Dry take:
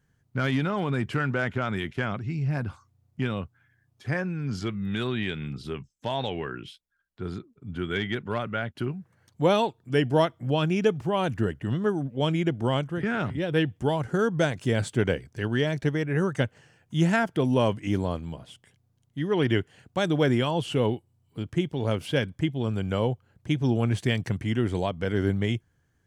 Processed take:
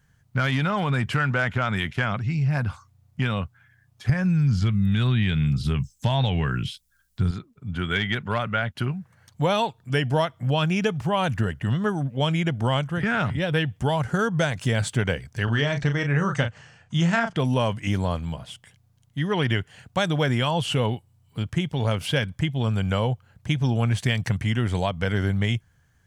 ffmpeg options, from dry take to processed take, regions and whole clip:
ffmpeg -i in.wav -filter_complex "[0:a]asettb=1/sr,asplit=3[link_01][link_02][link_03];[link_01]atrim=end=4.094[link_04];[link_02]atrim=start=4.09:end=7.31,asetpts=PTS-STARTPTS,afade=type=in:duration=0.004:curve=qsin,afade=type=out:start_time=3.216:duration=0.004:curve=qsin,acrossover=split=3600[link_05][link_06];[link_06]acompressor=threshold=-59dB:ratio=4:attack=1:release=60[link_07];[link_05][link_07]amix=inputs=2:normalize=0,bass=frequency=250:gain=13,treble=frequency=4000:gain=14[link_08];[link_03]atrim=start=7.306[link_09];[link_04][link_08]acrossfade=duration=0.004:curve1=hsin:curve2=qsin[link_10];[link_10][link_09]acrossfade=duration=0.004:curve1=qsin:curve2=hsin,asettb=1/sr,asplit=3[link_11][link_12][link_13];[link_11]atrim=end=15.444[link_14];[link_12]atrim=start=15.44:end=17.37,asetpts=PTS-STARTPTS,afade=type=in:duration=0.004:curve=qsin,afade=type=out:start_time=1.926:duration=0.004:curve=qsin,lowpass=frequency=7700:width=0.5412,lowpass=frequency=7700:width=1.3066,equalizer=frequency=1200:width_type=o:width=0.25:gain=4.5,asplit=2[link_15][link_16];[link_16]adelay=35,volume=-7.5dB[link_17];[link_15][link_17]amix=inputs=2:normalize=0,atrim=end_sample=85113[link_18];[link_13]atrim=start=17.366[link_19];[link_14][link_18]acrossfade=duration=0.004:curve1=hsin:curve2=qsin[link_20];[link_20][link_19]acrossfade=duration=0.004:curve1=qsin:curve2=hsin,equalizer=frequency=340:width_type=o:width=1.1:gain=-11,acompressor=threshold=-27dB:ratio=4,volume=8dB" out.wav

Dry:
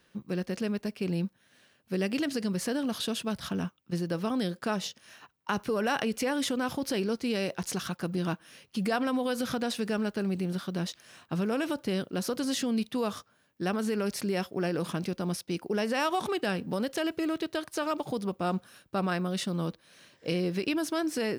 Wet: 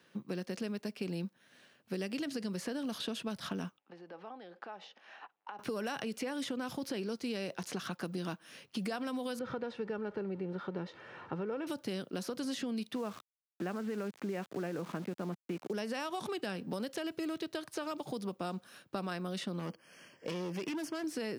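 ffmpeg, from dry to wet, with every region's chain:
ffmpeg -i in.wav -filter_complex "[0:a]asettb=1/sr,asplit=3[link_01][link_02][link_03];[link_01]atrim=end=3.784[link_04];[link_02]atrim=start=3.78:end=5.59,asetpts=PTS-STARTPTS,afade=type=in:duration=0.004:curve=qsin,afade=type=out:start_time=1.806:duration=0.004:curve=qsin,equalizer=frequency=800:width=6:gain=11.5,acompressor=threshold=-40dB:ratio=16:attack=3.2:release=140:knee=1:detection=peak,highpass=430,lowpass=2700[link_05];[link_03]atrim=start=5.586[link_06];[link_04][link_05]acrossfade=duration=0.004:curve1=hsin:curve2=qsin[link_07];[link_07][link_06]acrossfade=duration=0.004:curve1=qsin:curve2=hsin,asettb=1/sr,asplit=3[link_08][link_09][link_10];[link_08]atrim=end=9.394[link_11];[link_09]atrim=start=9.39:end=11.67,asetpts=PTS-STARTPTS,afade=type=in:duration=0.004:curve=qsin,afade=type=out:start_time=2.276:duration=0.004:curve=qsin,aeval=exprs='val(0)+0.5*0.00596*sgn(val(0))':channel_layout=same,lowpass=1600,aecho=1:1:2.2:0.5,atrim=end_sample=100548[link_12];[link_10]atrim=start=11.666[link_13];[link_11][link_12]acrossfade=duration=0.004:curve1=hsin:curve2=qsin[link_14];[link_14][link_13]acrossfade=duration=0.004:curve1=qsin:curve2=hsin,asettb=1/sr,asplit=3[link_15][link_16][link_17];[link_15]atrim=end=12.954[link_18];[link_16]atrim=start=12.95:end=15.73,asetpts=PTS-STARTPTS,afade=type=in:duration=0.004:curve=qsin,afade=type=out:start_time=2.776:duration=0.004:curve=qsin,lowpass=frequency=2300:width=0.5412,lowpass=frequency=2300:width=1.3066,aeval=exprs='val(0)*gte(abs(val(0)),0.0075)':channel_layout=same[link_19];[link_17]atrim=start=15.726[link_20];[link_18][link_19]acrossfade=duration=0.004:curve1=hsin:curve2=qsin[link_21];[link_21][link_20]acrossfade=duration=0.004:curve1=qsin:curve2=hsin,asettb=1/sr,asplit=3[link_22][link_23][link_24];[link_22]atrim=end=19.594[link_25];[link_23]atrim=start=19.59:end=21.04,asetpts=PTS-STARTPTS,afade=type=in:duration=0.004:curve=qsin,afade=type=out:start_time=1.446:duration=0.004:curve=qsin,asuperstop=centerf=3800:order=20:qfactor=3.6,volume=31dB,asoftclip=hard,volume=-31dB[link_26];[link_24]atrim=start=21.036[link_27];[link_25][link_26]acrossfade=duration=0.004:curve1=hsin:curve2=qsin[link_28];[link_28][link_27]acrossfade=duration=0.004:curve1=qsin:curve2=hsin,highpass=130,highshelf=frequency=6300:gain=-6,acrossover=split=170|3800[link_29][link_30][link_31];[link_29]acompressor=threshold=-51dB:ratio=4[link_32];[link_30]acompressor=threshold=-38dB:ratio=4[link_33];[link_31]acompressor=threshold=-49dB:ratio=4[link_34];[link_32][link_33][link_34]amix=inputs=3:normalize=0,volume=1dB" out.wav

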